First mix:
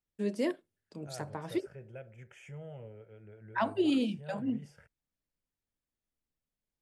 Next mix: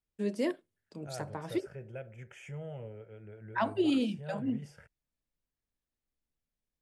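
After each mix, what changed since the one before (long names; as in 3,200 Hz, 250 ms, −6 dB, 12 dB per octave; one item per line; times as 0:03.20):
second voice +3.5 dB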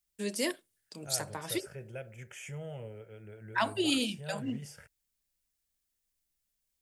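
first voice: add tilt shelving filter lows −4 dB
master: remove low-pass filter 1,800 Hz 6 dB per octave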